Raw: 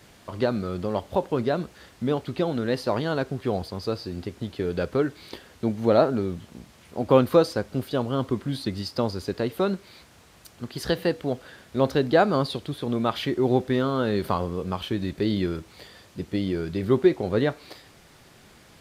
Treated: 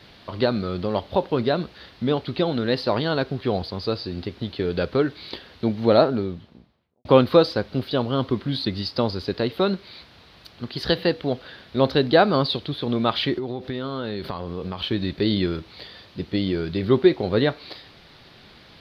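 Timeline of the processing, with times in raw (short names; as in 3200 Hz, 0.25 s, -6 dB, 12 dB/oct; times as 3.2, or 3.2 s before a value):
5.9–7.05 studio fade out
13.38–14.9 compressor 10:1, threshold -27 dBFS
whole clip: resonant high shelf 5600 Hz -11 dB, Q 3; gain +2.5 dB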